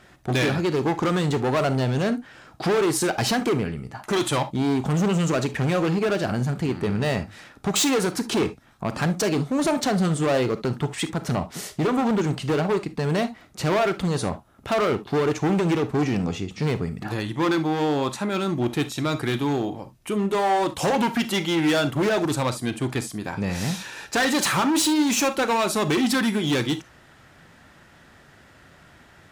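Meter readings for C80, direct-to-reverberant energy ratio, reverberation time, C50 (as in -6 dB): 41.5 dB, 12.0 dB, no single decay rate, 15.0 dB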